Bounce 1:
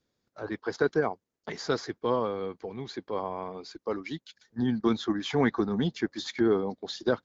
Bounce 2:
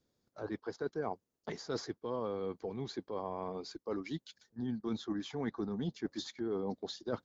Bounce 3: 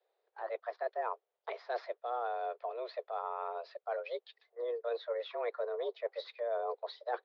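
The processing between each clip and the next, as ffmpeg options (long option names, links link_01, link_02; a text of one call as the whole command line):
ffmpeg -i in.wav -af "equalizer=frequency=2100:width=0.73:gain=-6,areverse,acompressor=threshold=-34dB:ratio=6,areverse" out.wav
ffmpeg -i in.wav -af "highpass=frequency=160:width_type=q:width=0.5412,highpass=frequency=160:width_type=q:width=1.307,lowpass=frequency=3600:width_type=q:width=0.5176,lowpass=frequency=3600:width_type=q:width=0.7071,lowpass=frequency=3600:width_type=q:width=1.932,afreqshift=240,volume=1dB" out.wav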